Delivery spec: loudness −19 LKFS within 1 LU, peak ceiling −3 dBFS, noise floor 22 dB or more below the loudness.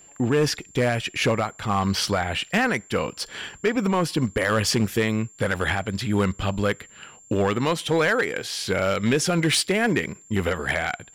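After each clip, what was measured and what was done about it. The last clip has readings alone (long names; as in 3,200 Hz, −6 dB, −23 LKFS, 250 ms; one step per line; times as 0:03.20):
share of clipped samples 1.1%; peaks flattened at −14.5 dBFS; interfering tone 7,300 Hz; level of the tone −48 dBFS; integrated loudness −23.5 LKFS; sample peak −14.5 dBFS; target loudness −19.0 LKFS
→ clipped peaks rebuilt −14.5 dBFS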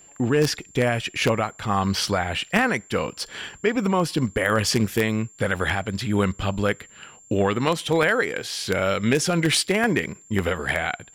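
share of clipped samples 0.0%; interfering tone 7,300 Hz; level of the tone −48 dBFS
→ notch filter 7,300 Hz, Q 30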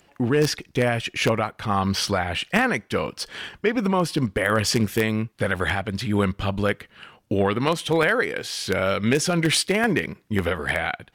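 interfering tone none found; integrated loudness −23.5 LKFS; sample peak −5.5 dBFS; target loudness −19.0 LKFS
→ level +4.5 dB
brickwall limiter −3 dBFS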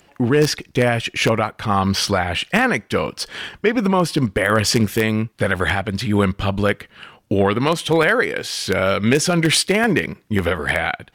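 integrated loudness −19.0 LKFS; sample peak −3.0 dBFS; background noise floor −56 dBFS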